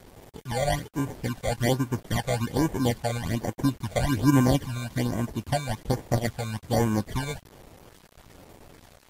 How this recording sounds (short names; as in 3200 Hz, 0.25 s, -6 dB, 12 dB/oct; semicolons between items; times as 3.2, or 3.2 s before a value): aliases and images of a low sample rate 1300 Hz, jitter 0%; phasing stages 12, 1.2 Hz, lowest notch 290–4500 Hz; a quantiser's noise floor 8-bit, dither none; Vorbis